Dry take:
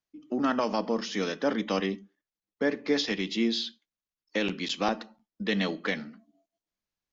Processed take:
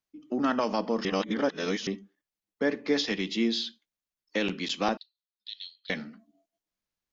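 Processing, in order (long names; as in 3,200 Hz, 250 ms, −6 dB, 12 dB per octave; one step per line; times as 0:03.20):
0:01.05–0:01.87: reverse
0:04.97–0:05.90: flat-topped band-pass 4,000 Hz, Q 3.7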